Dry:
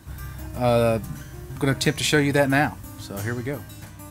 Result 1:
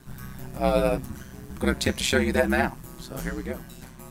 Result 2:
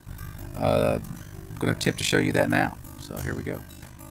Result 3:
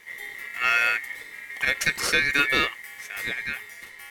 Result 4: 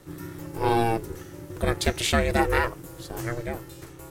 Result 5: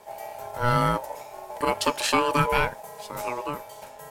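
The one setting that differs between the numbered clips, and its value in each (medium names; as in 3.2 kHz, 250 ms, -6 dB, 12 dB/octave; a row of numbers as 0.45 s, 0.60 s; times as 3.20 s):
ring modulator, frequency: 64 Hz, 25 Hz, 2 kHz, 230 Hz, 730 Hz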